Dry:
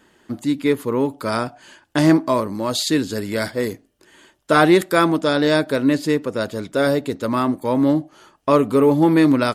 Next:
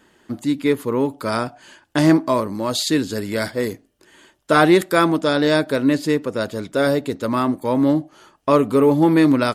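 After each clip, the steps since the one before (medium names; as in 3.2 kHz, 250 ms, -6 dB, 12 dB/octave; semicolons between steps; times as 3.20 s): no audible change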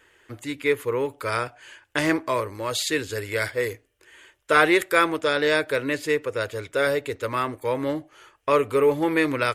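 FFT filter 110 Hz 0 dB, 200 Hz -19 dB, 470 Hz +2 dB, 680 Hz -6 dB, 2.3 kHz +7 dB, 4.5 kHz -4 dB, 6.9 kHz 0 dB; trim -2.5 dB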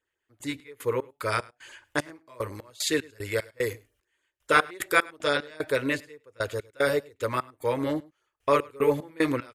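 trance gate "..x.x.x.xx" 75 bpm -24 dB; LFO notch sine 7.2 Hz 350–3000 Hz; delay 103 ms -24 dB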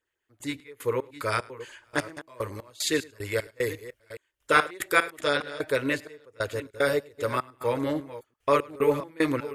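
chunks repeated in reverse 417 ms, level -14 dB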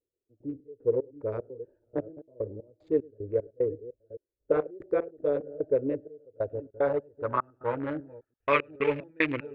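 local Wiener filter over 41 samples; low-pass sweep 490 Hz -> 2.4 kHz, 5.99–8.64 s; dynamic bell 2.8 kHz, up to +7 dB, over -46 dBFS, Q 1.1; trim -4 dB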